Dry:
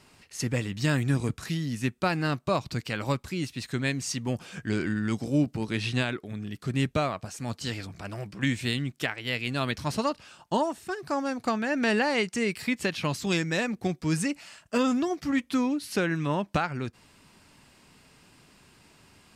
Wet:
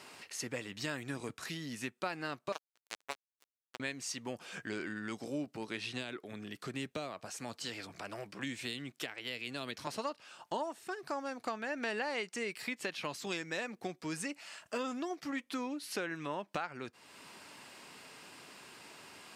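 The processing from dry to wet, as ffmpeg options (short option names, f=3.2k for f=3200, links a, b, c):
-filter_complex "[0:a]asettb=1/sr,asplit=3[a][b][c];[a]atrim=end=2.524[d];[b]atrim=start=2.52:end=3.8,asetpts=PTS-STARTPTS,afade=t=in:d=0.004:c=qsin,afade=t=out:st=1.276:d=0.004:c=qsin,acrusher=bits=2:mix=0:aa=0.5[e];[c]atrim=start=3.796[f];[d][e]acrossfade=d=0.004:c1=hsin:c2=qsin[g];[g][f]acrossfade=d=0.004:c1=qsin:c2=hsin,asettb=1/sr,asplit=3[h][i][j];[h]atrim=end=5.814[k];[i]atrim=start=5.81:end=9.87,asetpts=PTS-STARTPTS,afade=t=in:d=0.004:c=qsin,afade=t=out:st=4.056:d=0.004:c=qsin,acrossover=split=490|3000[l][m][n];[m]acompressor=threshold=-36dB:ratio=6:attack=3.2:release=140:knee=2.83:detection=peak[o];[l][o][n]amix=inputs=3:normalize=0[p];[j]atrim=start=9.866[q];[k][p]acrossfade=d=0.004:c1=hsin:c2=qsin[r];[r][q]acrossfade=d=0.004:c1=qsin:c2=hsin,highpass=98,bass=f=250:g=-14,treble=f=4k:g=-2,acompressor=threshold=-54dB:ratio=2,volume=6.5dB"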